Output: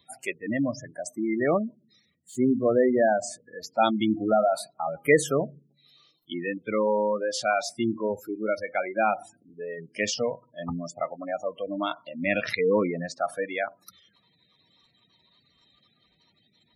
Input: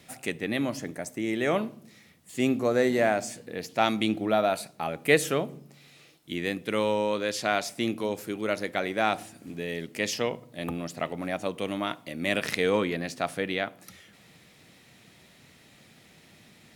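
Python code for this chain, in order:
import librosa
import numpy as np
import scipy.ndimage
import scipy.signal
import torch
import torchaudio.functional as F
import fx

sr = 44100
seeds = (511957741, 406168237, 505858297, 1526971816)

y = fx.spec_gate(x, sr, threshold_db=-15, keep='strong')
y = fx.noise_reduce_blind(y, sr, reduce_db=16)
y = F.gain(torch.from_numpy(y), 3.0).numpy()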